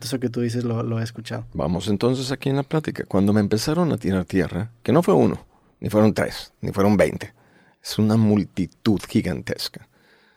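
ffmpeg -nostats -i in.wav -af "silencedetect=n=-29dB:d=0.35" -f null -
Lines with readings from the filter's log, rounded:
silence_start: 5.36
silence_end: 5.82 | silence_duration: 0.46
silence_start: 7.26
silence_end: 7.86 | silence_duration: 0.60
silence_start: 9.77
silence_end: 10.37 | silence_duration: 0.60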